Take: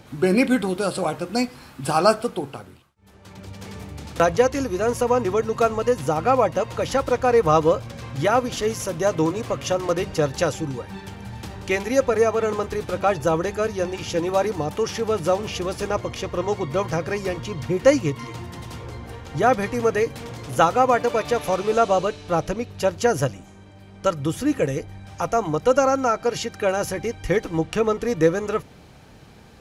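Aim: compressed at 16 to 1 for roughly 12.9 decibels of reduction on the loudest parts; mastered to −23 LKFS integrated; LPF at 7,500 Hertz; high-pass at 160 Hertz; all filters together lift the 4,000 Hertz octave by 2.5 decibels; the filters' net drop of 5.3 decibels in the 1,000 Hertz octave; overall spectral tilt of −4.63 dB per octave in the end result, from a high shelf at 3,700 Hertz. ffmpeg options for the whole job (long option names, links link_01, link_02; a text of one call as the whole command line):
ffmpeg -i in.wav -af "highpass=160,lowpass=7500,equalizer=frequency=1000:width_type=o:gain=-8,highshelf=frequency=3700:gain=-3.5,equalizer=frequency=4000:width_type=o:gain=6.5,acompressor=threshold=-25dB:ratio=16,volume=8.5dB" out.wav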